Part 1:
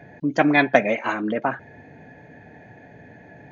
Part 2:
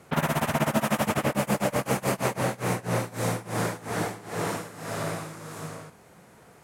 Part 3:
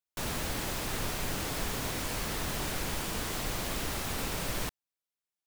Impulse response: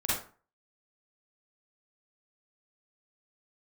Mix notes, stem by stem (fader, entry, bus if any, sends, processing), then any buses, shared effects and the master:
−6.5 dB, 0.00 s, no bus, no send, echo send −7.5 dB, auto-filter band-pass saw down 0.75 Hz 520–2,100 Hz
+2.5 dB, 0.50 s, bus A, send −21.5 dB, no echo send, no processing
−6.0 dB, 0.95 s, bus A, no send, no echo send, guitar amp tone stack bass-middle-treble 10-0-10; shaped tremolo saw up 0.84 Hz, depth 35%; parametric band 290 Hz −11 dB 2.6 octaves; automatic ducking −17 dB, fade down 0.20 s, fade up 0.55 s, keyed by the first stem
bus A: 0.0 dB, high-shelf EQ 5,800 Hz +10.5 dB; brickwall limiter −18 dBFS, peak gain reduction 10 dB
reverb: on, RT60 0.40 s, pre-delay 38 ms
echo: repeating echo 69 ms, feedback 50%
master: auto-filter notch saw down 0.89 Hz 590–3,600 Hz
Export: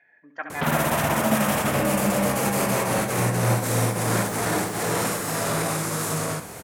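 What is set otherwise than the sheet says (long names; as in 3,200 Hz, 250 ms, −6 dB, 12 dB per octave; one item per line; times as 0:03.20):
stem 2 +2.5 dB → +13.5 dB
stem 3 −6.0 dB → −13.0 dB
master: missing auto-filter notch saw down 0.89 Hz 590–3,600 Hz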